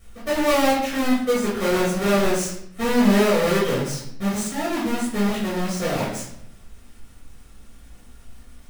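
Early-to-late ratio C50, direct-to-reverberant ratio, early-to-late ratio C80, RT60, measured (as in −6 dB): 3.0 dB, −7.5 dB, 6.5 dB, 0.70 s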